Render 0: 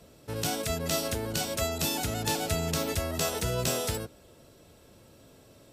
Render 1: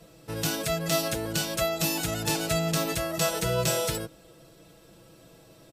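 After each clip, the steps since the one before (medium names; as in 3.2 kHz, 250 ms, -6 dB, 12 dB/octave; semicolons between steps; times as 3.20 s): comb 6.1 ms, depth 86%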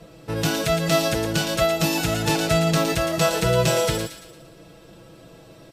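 treble shelf 5.5 kHz -11 dB; feedback echo behind a high-pass 114 ms, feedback 46%, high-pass 2.2 kHz, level -5.5 dB; trim +7.5 dB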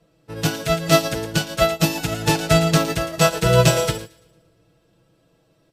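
reverberation RT60 2.0 s, pre-delay 7 ms, DRR 14.5 dB; upward expansion 2.5:1, over -31 dBFS; trim +6.5 dB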